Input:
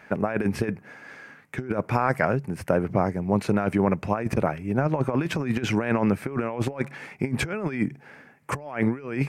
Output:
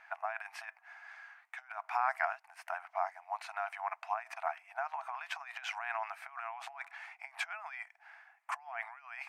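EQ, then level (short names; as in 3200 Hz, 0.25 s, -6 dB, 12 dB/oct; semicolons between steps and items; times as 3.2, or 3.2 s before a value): brick-wall FIR high-pass 650 Hz; high shelf 5300 Hz -11 dB; -6.0 dB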